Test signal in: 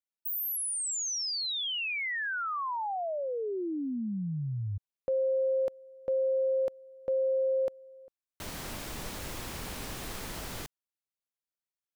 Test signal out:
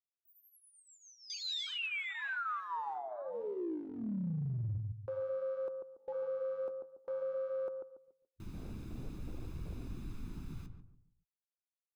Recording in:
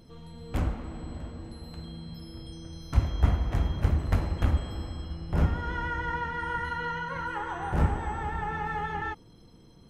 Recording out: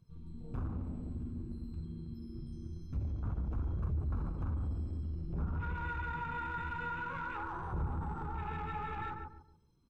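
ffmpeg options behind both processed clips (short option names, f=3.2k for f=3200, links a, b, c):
-filter_complex "[0:a]acrossover=split=4800[a][b];[b]acompressor=threshold=-48dB:ratio=4:attack=1:release=60[c];[a][c]amix=inputs=2:normalize=0,afwtdn=0.0178,aecho=1:1:0.8:0.55,asplit=2[d][e];[e]adelay=142,lowpass=f=940:p=1,volume=-6dB,asplit=2[f][g];[g]adelay=142,lowpass=f=940:p=1,volume=0.36,asplit=2[h][i];[i]adelay=142,lowpass=f=940:p=1,volume=0.36,asplit=2[j][k];[k]adelay=142,lowpass=f=940:p=1,volume=0.36[l];[d][f][h][j][l]amix=inputs=5:normalize=0,acompressor=threshold=-31dB:ratio=3:attack=0.22:release=35:knee=1:detection=peak,flanger=delay=1.8:depth=9.3:regen=-57:speed=0.52:shape=sinusoidal"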